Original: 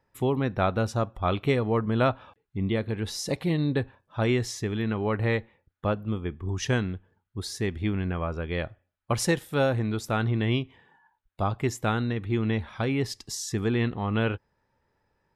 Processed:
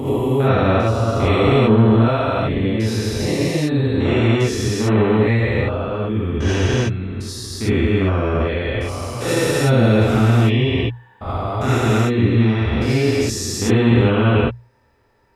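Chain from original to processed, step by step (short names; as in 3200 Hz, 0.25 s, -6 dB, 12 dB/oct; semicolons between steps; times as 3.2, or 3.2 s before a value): stepped spectrum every 0.4 s; notches 60/120 Hz; non-linear reverb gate 0.1 s rising, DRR -7 dB; gain +7 dB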